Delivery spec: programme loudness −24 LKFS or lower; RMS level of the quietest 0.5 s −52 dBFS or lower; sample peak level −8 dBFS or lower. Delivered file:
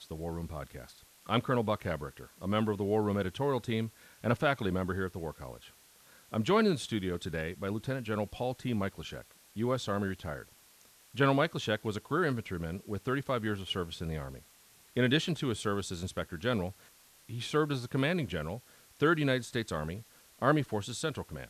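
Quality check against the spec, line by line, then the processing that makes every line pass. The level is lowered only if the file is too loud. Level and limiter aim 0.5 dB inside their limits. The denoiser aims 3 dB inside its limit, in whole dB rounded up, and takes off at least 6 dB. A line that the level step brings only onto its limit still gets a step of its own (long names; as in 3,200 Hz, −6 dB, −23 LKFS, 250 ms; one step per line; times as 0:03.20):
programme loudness −33.0 LKFS: in spec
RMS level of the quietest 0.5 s −61 dBFS: in spec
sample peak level −13.0 dBFS: in spec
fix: no processing needed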